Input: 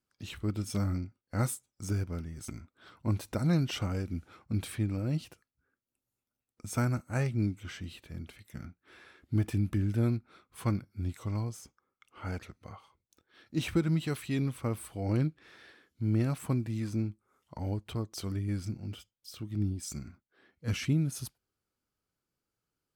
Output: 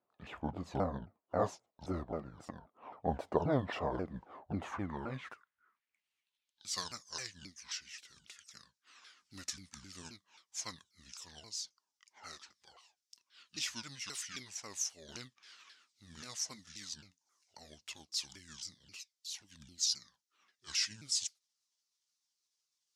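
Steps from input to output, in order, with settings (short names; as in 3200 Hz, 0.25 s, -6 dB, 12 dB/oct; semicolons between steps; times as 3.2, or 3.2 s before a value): repeated pitch sweeps -8 st, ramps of 0.266 s; band-pass sweep 660 Hz -> 5600 Hz, 4.48–7.04; gain +13.5 dB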